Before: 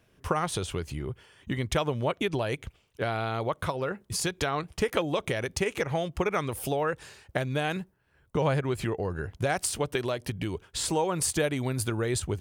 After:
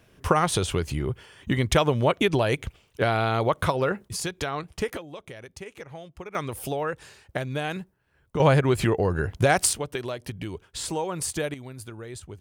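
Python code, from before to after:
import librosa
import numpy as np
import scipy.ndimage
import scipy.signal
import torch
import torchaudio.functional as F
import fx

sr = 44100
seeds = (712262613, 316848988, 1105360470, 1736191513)

y = fx.gain(x, sr, db=fx.steps((0.0, 6.5), (4.08, -1.0), (4.97, -12.0), (6.35, -0.5), (8.4, 7.5), (9.73, -2.0), (11.54, -10.5)))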